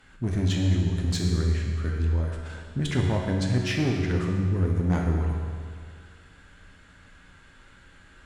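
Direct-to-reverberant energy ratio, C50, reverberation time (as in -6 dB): 0.0 dB, 2.0 dB, 2.1 s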